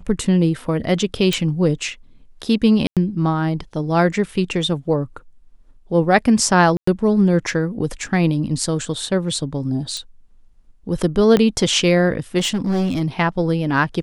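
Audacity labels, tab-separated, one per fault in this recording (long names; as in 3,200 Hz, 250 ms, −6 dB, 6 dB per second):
1.330000	1.330000	click
2.870000	2.970000	drop-out 97 ms
6.770000	6.870000	drop-out 104 ms
9.970000	9.970000	click −15 dBFS
11.370000	11.370000	click −5 dBFS
12.380000	13.020000	clipping −16 dBFS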